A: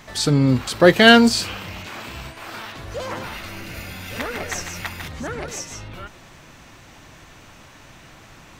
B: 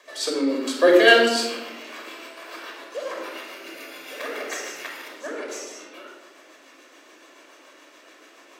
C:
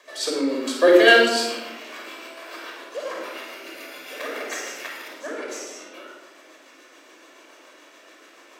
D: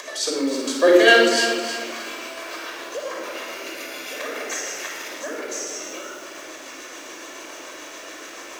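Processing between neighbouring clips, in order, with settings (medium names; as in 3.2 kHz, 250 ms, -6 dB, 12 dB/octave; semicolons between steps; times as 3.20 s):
steep high-pass 280 Hz 48 dB/octave; rotary cabinet horn 7 Hz; simulated room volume 3300 m³, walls furnished, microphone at 5.6 m; trim -5 dB
flutter echo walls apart 9.1 m, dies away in 0.38 s
upward compressor, threshold -27 dBFS; peaking EQ 6.3 kHz +7 dB 0.45 oct; bit-crushed delay 315 ms, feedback 35%, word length 7-bit, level -8.5 dB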